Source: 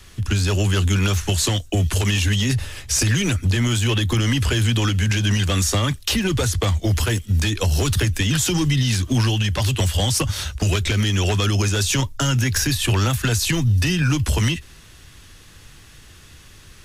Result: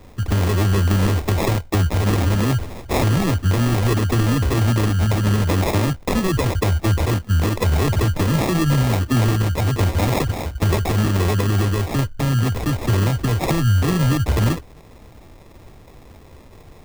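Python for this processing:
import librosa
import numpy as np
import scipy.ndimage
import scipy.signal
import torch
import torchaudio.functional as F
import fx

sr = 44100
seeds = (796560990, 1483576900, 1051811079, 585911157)

y = fx.high_shelf(x, sr, hz=3000.0, db=-12.0, at=(11.28, 13.41))
y = fx.sample_hold(y, sr, seeds[0], rate_hz=1500.0, jitter_pct=0)
y = F.gain(torch.from_numpy(y), 1.5).numpy()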